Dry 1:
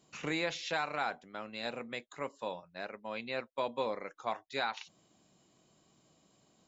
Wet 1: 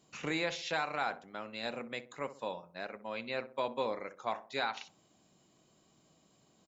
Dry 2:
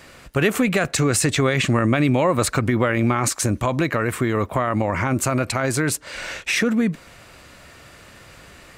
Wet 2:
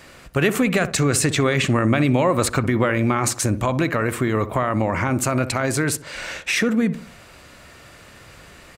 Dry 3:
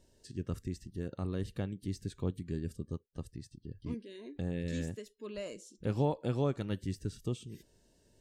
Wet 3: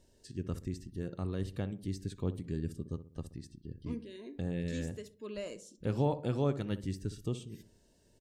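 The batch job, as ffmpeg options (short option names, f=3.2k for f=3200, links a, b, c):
-filter_complex "[0:a]asplit=2[a][b];[b]adelay=63,lowpass=f=1k:p=1,volume=-12dB,asplit=2[c][d];[d]adelay=63,lowpass=f=1k:p=1,volume=0.46,asplit=2[e][f];[f]adelay=63,lowpass=f=1k:p=1,volume=0.46,asplit=2[g][h];[h]adelay=63,lowpass=f=1k:p=1,volume=0.46,asplit=2[i][j];[j]adelay=63,lowpass=f=1k:p=1,volume=0.46[k];[a][c][e][g][i][k]amix=inputs=6:normalize=0"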